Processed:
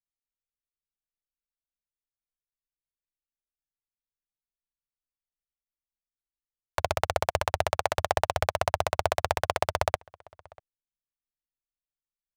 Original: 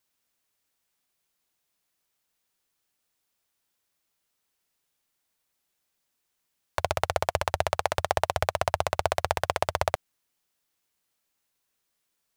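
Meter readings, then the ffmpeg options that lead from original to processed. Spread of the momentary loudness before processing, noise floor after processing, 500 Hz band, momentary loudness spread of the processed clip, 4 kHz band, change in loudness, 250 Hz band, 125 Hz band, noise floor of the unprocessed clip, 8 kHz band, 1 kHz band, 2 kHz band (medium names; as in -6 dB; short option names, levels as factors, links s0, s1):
3 LU, under -85 dBFS, 0.0 dB, 3 LU, 0.0 dB, 0.0 dB, 0.0 dB, 0.0 dB, -79 dBFS, 0.0 dB, 0.0 dB, 0.0 dB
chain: -filter_complex "[0:a]anlmdn=0.1,asplit=2[s0][s1];[s1]adelay=641.4,volume=0.0562,highshelf=f=4000:g=-14.4[s2];[s0][s2]amix=inputs=2:normalize=0"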